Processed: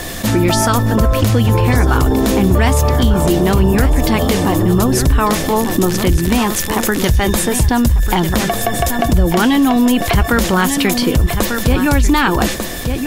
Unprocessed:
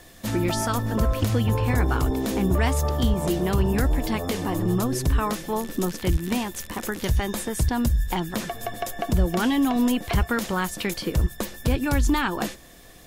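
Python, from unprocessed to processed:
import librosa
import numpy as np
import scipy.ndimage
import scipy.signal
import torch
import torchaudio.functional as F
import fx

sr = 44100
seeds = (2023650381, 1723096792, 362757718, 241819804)

y = x + 10.0 ** (-11.5 / 20.0) * np.pad(x, (int(1195 * sr / 1000.0), 0))[:len(x)]
y = fx.env_flatten(y, sr, amount_pct=50)
y = y * 10.0 ** (7.0 / 20.0)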